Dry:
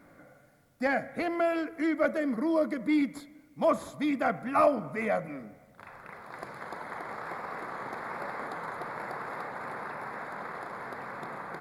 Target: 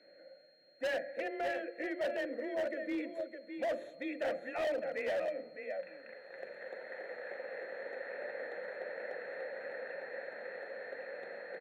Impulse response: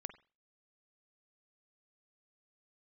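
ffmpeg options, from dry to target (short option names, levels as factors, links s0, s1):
-filter_complex "[0:a]asuperstop=centerf=4900:order=4:qfactor=3.5,asplit=2[s0][s1];[s1]aecho=0:1:610:0.398[s2];[s0][s2]amix=inputs=2:normalize=0,aeval=exprs='val(0)+0.00282*sin(2*PI*4200*n/s)':c=same,afreqshift=22,asplit=3[s3][s4][s5];[s3]bandpass=f=530:t=q:w=8,volume=1[s6];[s4]bandpass=f=1840:t=q:w=8,volume=0.501[s7];[s5]bandpass=f=2480:t=q:w=8,volume=0.355[s8];[s6][s7][s8]amix=inputs=3:normalize=0,bandreject=f=50:t=h:w=6,bandreject=f=100:t=h:w=6,bandreject=f=150:t=h:w=6,bandreject=f=200:t=h:w=6,bandreject=f=250:t=h:w=6,bandreject=f=300:t=h:w=6,bandreject=f=350:t=h:w=6,bandreject=f=400:t=h:w=6,bandreject=f=450:t=h:w=6,asoftclip=type=hard:threshold=0.0141,volume=2"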